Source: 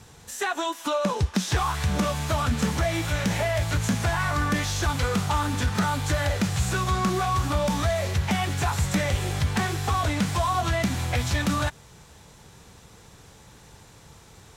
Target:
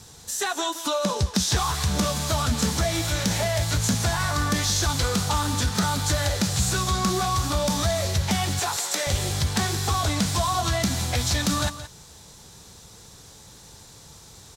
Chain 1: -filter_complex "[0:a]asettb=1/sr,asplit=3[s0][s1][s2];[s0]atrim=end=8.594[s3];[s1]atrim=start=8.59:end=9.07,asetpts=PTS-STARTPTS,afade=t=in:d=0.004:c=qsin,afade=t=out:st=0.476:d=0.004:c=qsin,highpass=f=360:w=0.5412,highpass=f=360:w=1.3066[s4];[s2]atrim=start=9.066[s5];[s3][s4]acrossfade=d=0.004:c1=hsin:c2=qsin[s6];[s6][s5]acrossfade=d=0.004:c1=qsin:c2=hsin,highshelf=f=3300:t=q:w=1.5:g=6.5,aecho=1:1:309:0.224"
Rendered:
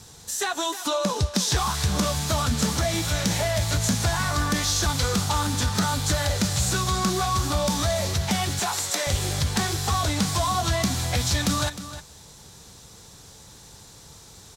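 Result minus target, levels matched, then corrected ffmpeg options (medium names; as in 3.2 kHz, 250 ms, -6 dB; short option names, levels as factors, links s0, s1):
echo 136 ms late
-filter_complex "[0:a]asettb=1/sr,asplit=3[s0][s1][s2];[s0]atrim=end=8.594[s3];[s1]atrim=start=8.59:end=9.07,asetpts=PTS-STARTPTS,afade=t=in:d=0.004:c=qsin,afade=t=out:st=0.476:d=0.004:c=qsin,highpass=f=360:w=0.5412,highpass=f=360:w=1.3066[s4];[s2]atrim=start=9.066[s5];[s3][s4]acrossfade=d=0.004:c1=hsin:c2=qsin[s6];[s6][s5]acrossfade=d=0.004:c1=qsin:c2=hsin,highshelf=f=3300:t=q:w=1.5:g=6.5,aecho=1:1:173:0.224"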